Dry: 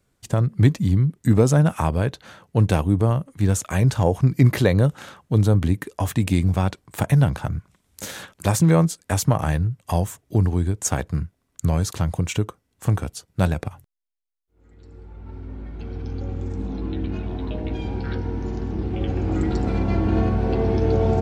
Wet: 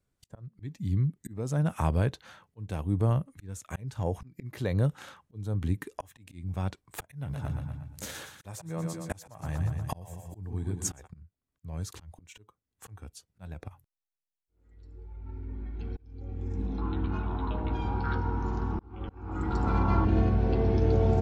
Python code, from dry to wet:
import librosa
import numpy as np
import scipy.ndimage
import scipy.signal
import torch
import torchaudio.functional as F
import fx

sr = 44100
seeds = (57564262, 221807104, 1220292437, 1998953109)

y = fx.echo_split(x, sr, split_hz=400.0, low_ms=156, high_ms=119, feedback_pct=52, wet_db=-8.5, at=(7.21, 11.06), fade=0.02)
y = fx.band_shelf(y, sr, hz=1100.0, db=13.5, octaves=1.0, at=(16.78, 20.05))
y = fx.low_shelf(y, sr, hz=110.0, db=5.5)
y = fx.auto_swell(y, sr, attack_ms=632.0)
y = fx.noise_reduce_blind(y, sr, reduce_db=7)
y = F.gain(torch.from_numpy(y), -6.5).numpy()